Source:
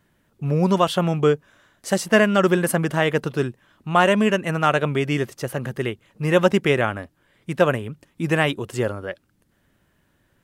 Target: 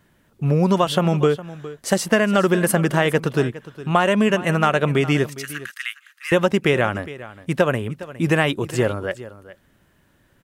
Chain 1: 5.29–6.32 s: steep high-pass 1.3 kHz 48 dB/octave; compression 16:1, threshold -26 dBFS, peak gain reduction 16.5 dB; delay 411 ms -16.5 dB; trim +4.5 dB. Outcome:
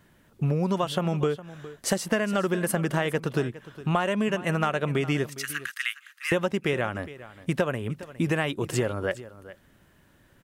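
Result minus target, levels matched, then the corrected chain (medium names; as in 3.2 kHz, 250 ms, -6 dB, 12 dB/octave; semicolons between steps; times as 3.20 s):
compression: peak gain reduction +8.5 dB
5.29–6.32 s: steep high-pass 1.3 kHz 48 dB/octave; compression 16:1, threshold -17 dBFS, peak gain reduction 8 dB; delay 411 ms -16.5 dB; trim +4.5 dB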